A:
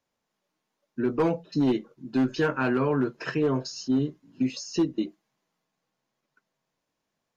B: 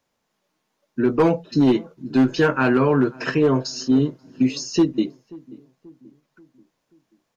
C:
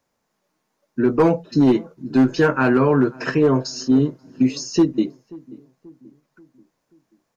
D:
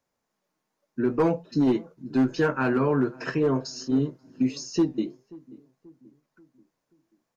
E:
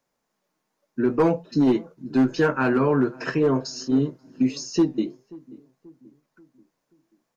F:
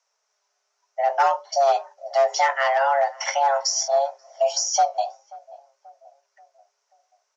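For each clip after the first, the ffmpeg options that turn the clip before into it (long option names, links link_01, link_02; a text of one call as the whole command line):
ffmpeg -i in.wav -filter_complex "[0:a]asplit=2[link_01][link_02];[link_02]adelay=534,lowpass=frequency=940:poles=1,volume=-21.5dB,asplit=2[link_03][link_04];[link_04]adelay=534,lowpass=frequency=940:poles=1,volume=0.51,asplit=2[link_05][link_06];[link_06]adelay=534,lowpass=frequency=940:poles=1,volume=0.51,asplit=2[link_07][link_08];[link_08]adelay=534,lowpass=frequency=940:poles=1,volume=0.51[link_09];[link_01][link_03][link_05][link_07][link_09]amix=inputs=5:normalize=0,volume=7dB" out.wav
ffmpeg -i in.wav -af "equalizer=frequency=3200:width_type=o:width=0.88:gain=-5.5,volume=1.5dB" out.wav
ffmpeg -i in.wav -af "flanger=delay=1.3:depth=6.6:regen=-85:speed=0.5:shape=triangular,volume=-2.5dB" out.wav
ffmpeg -i in.wav -af "equalizer=frequency=83:width_type=o:width=0.45:gain=-12.5,volume=3dB" out.wav
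ffmpeg -i in.wav -af "afreqshift=410,lowpass=frequency=5800:width_type=q:width=4.9" out.wav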